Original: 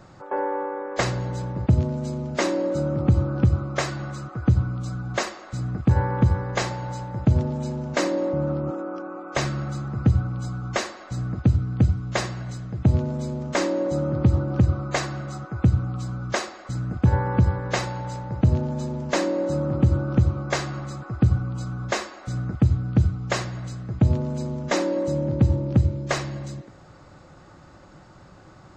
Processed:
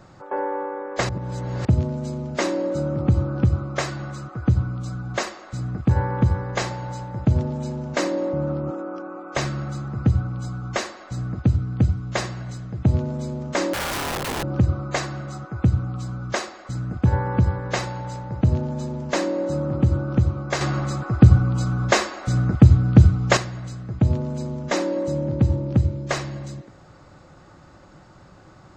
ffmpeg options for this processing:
ffmpeg -i in.wav -filter_complex "[0:a]asettb=1/sr,asplit=3[link_01][link_02][link_03];[link_01]atrim=end=13.734[link_04];[link_02]atrim=start=13.73:end=14.43,asetpts=PTS-STARTPTS,afade=type=in:duration=0.004:curve=qsin,afade=type=out:start_time=0.696:duration=0.004:curve=qsin,aeval=exprs='(mod(12.6*val(0)+1,2)-1)/12.6':channel_layout=same[link_05];[link_03]atrim=start=14.426[link_06];[link_04][link_05]acrossfade=duration=0.004:curve1=hsin:curve2=qsin[link_07];[link_07][link_06]acrossfade=duration=0.004:curve1=qsin:curve2=hsin,asplit=5[link_08][link_09][link_10][link_11][link_12];[link_08]atrim=end=1.092[link_13];[link_09]atrim=start=1.088:end=1.652,asetpts=PTS-STARTPTS,areverse[link_14];[link_10]atrim=start=1.648:end=20.612[link_15];[link_11]atrim=start=20.608:end=23.372,asetpts=PTS-STARTPTS,volume=7.5dB[link_16];[link_12]atrim=start=23.368[link_17];[link_13][link_14]acrossfade=duration=0.004:curve1=hsin:curve2=hsin[link_18];[link_18][link_15]acrossfade=duration=0.004:curve1=hsin:curve2=hsin[link_19];[link_19][link_16]acrossfade=duration=0.004:curve1=hsin:curve2=hsin[link_20];[link_20][link_17]acrossfade=duration=0.004:curve1=hsin:curve2=hsin" out.wav

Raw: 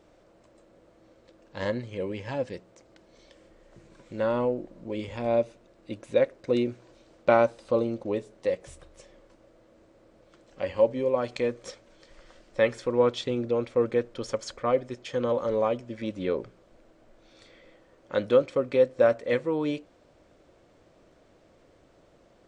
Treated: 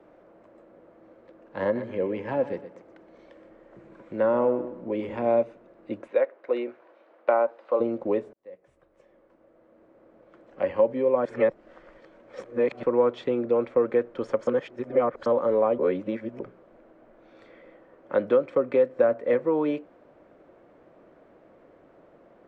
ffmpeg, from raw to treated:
ffmpeg -i in.wav -filter_complex "[0:a]asettb=1/sr,asplit=3[link_01][link_02][link_03];[link_01]atrim=end=1.634[link_04];[link_02]atrim=start=1.63:end=5.43,asetpts=PTS-STARTPTS,afade=type=in:duration=0.004:curve=qsin,afade=type=out:start_time=3.796:duration=0.004:curve=qsin,aecho=1:1:121|242|363|484:0.224|0.0806|0.029|0.0104,atrim=end_sample=167580[link_05];[link_03]atrim=start=5.426[link_06];[link_04][link_05]acrossfade=duration=0.004:curve1=hsin:curve2=qsin[link_07];[link_07][link_06]acrossfade=duration=0.004:curve1=qsin:curve2=hsin,asplit=3[link_08][link_09][link_10];[link_08]afade=type=out:start_time=6.07:duration=0.02[link_11];[link_09]highpass=580,lowpass=3700,afade=type=in:start_time=6.07:duration=0.02,afade=type=out:start_time=7.79:duration=0.02[link_12];[link_10]afade=type=in:start_time=7.79:duration=0.02[link_13];[link_11][link_12][link_13]amix=inputs=3:normalize=0,asplit=8[link_14][link_15][link_16][link_17][link_18][link_19][link_20][link_21];[link_14]atrim=end=8.33,asetpts=PTS-STARTPTS,afade=type=out:start_time=8.326:duration=0.004:curve=hsin[link_22];[link_15]atrim=start=8.33:end=11.252,asetpts=PTS-STARTPTS,afade=type=in:duration=2.31[link_23];[link_16]atrim=start=11.248:end=12.832,asetpts=PTS-STARTPTS,areverse[link_24];[link_17]atrim=start=12.828:end=14.472[link_25];[link_18]atrim=start=14.468:end=15.262,asetpts=PTS-STARTPTS,areverse[link_26];[link_19]atrim=start=15.258:end=15.782[link_27];[link_20]atrim=start=15.778:end=16.402,asetpts=PTS-STARTPTS,areverse[link_28];[link_21]atrim=start=16.398[link_29];[link_22][link_23]concat=n=2:v=0:a=1[link_30];[link_30][link_24]acrossfade=duration=0.004:curve1=hsin:curve2=hsin[link_31];[link_31][link_25]acrossfade=duration=0.004:curve1=hsin:curve2=hsin[link_32];[link_32][link_26]acrossfade=duration=0.004:curve1=hsin:curve2=hsin[link_33];[link_33][link_27]acrossfade=duration=0.004:curve1=hsin:curve2=hsin[link_34];[link_34][link_28]acrossfade=duration=0.004:curve1=hsin:curve2=hsin[link_35];[link_35][link_29]acrossfade=duration=0.004:curve1=hsin:curve2=hsin,acrossover=split=160 2200:gain=0.224 1 0.0794[link_36][link_37][link_38];[link_36][link_37][link_38]amix=inputs=3:normalize=0,acrossover=split=330|1100[link_39][link_40][link_41];[link_39]acompressor=threshold=-37dB:ratio=4[link_42];[link_40]acompressor=threshold=-25dB:ratio=4[link_43];[link_41]acompressor=threshold=-42dB:ratio=4[link_44];[link_42][link_43][link_44]amix=inputs=3:normalize=0,volume=5.5dB" out.wav

